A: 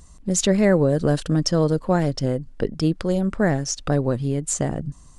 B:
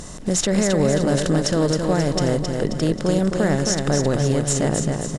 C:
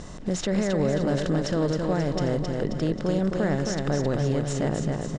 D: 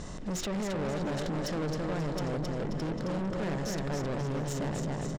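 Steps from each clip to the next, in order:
per-bin compression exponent 0.6; limiter -10.5 dBFS, peak gain reduction 8.5 dB; on a send: feedback echo 0.267 s, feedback 49%, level -5 dB
in parallel at -2.5 dB: limiter -17.5 dBFS, peak gain reduction 10.5 dB; on the sum: air absorption 110 m; gain -7.5 dB
de-hum 122.5 Hz, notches 29; soft clip -30 dBFS, distortion -7 dB; outdoor echo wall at 120 m, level -12 dB

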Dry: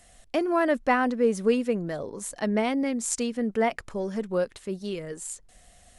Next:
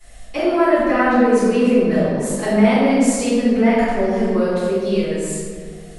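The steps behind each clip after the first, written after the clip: limiter -19 dBFS, peak gain reduction 8.5 dB; reverb RT60 2.0 s, pre-delay 3 ms, DRR -17.5 dB; gain -8 dB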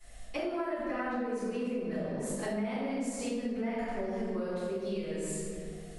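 compressor 6:1, threshold -23 dBFS, peak gain reduction 14 dB; gain -8.5 dB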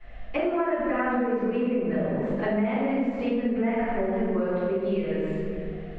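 LPF 2700 Hz 24 dB/oct; gain +8.5 dB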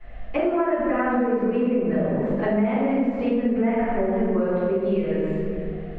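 high shelf 2100 Hz -7 dB; gain +4 dB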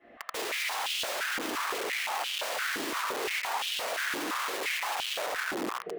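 wrapped overs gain 24.5 dB; stepped high-pass 5.8 Hz 300–3000 Hz; gain -6.5 dB

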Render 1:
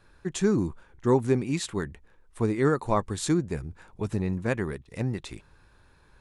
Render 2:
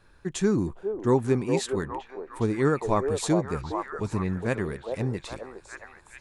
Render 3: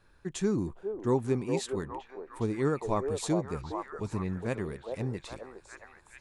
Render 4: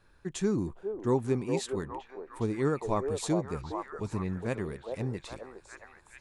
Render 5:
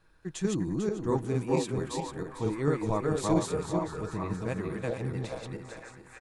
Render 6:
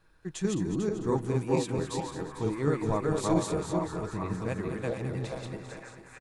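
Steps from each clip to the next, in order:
delay with a stepping band-pass 0.412 s, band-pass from 570 Hz, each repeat 0.7 oct, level -1 dB
dynamic EQ 1600 Hz, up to -4 dB, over -44 dBFS, Q 2.4; gain -5 dB
nothing audible
regenerating reverse delay 0.223 s, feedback 45%, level -0.5 dB; comb 6.3 ms, depth 33%; gain -2 dB
echo 0.21 s -10.5 dB

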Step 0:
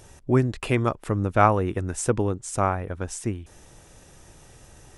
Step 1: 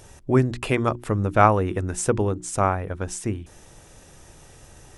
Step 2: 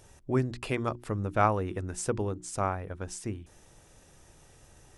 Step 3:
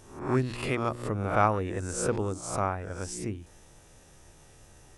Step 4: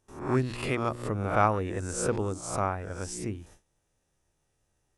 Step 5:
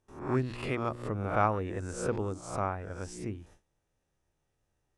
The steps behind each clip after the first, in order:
notches 60/120/180/240/300/360 Hz; gain +2 dB
dynamic EQ 4700 Hz, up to +5 dB, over -53 dBFS, Q 2.9; gain -8.5 dB
spectral swells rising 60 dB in 0.54 s
gate with hold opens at -41 dBFS
high shelf 5800 Hz -10 dB; gain -3 dB

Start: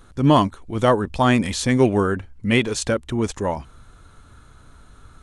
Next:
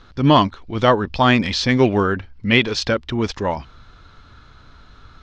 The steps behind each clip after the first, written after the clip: EQ curve 490 Hz 0 dB, 5100 Hz +7 dB, 9400 Hz -26 dB; gain +1 dB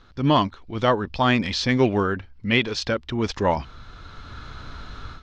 AGC gain up to 14 dB; gain -5.5 dB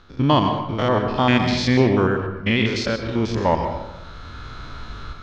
stepped spectrum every 0.1 s; on a send at -6.5 dB: reverb RT60 0.95 s, pre-delay 0.108 s; on the sum: gain +3.5 dB

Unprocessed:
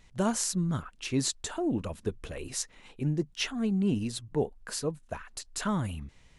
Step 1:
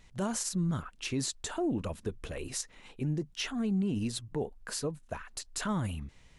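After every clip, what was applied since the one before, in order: limiter -24 dBFS, peak gain reduction 10.5 dB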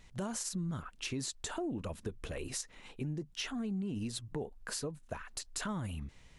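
compressor 3:1, threshold -36 dBFS, peak gain reduction 7 dB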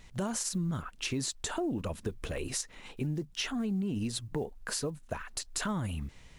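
block floating point 7-bit; gain +4.5 dB

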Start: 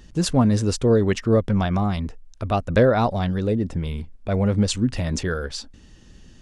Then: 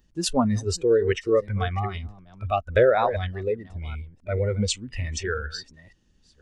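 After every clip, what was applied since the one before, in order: reverse delay 0.494 s, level -11 dB; spectral noise reduction 17 dB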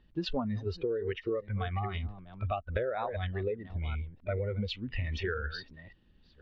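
steep low-pass 4000 Hz 36 dB/oct; compressor 16:1, threshold -29 dBFS, peak gain reduction 16.5 dB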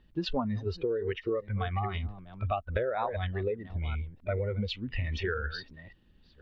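dynamic EQ 960 Hz, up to +4 dB, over -48 dBFS, Q 2.8; gain +1.5 dB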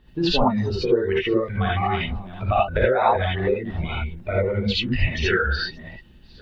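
non-linear reverb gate 0.1 s rising, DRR -6 dB; harmonic-percussive split harmonic -5 dB; gain +8.5 dB

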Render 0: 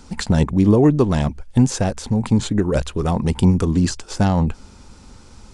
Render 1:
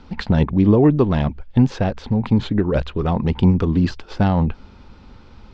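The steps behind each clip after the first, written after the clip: LPF 3900 Hz 24 dB/oct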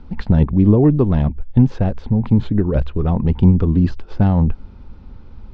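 tilt -2.5 dB/oct; gain -4 dB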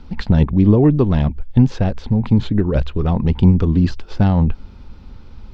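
high shelf 2600 Hz +11.5 dB

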